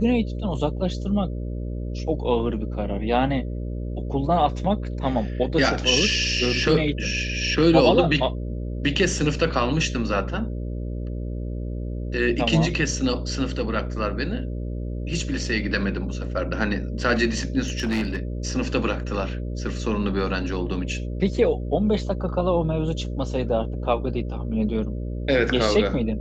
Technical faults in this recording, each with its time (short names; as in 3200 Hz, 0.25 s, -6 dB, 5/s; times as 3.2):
buzz 60 Hz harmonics 10 -29 dBFS
17.63–18.18 clipped -20 dBFS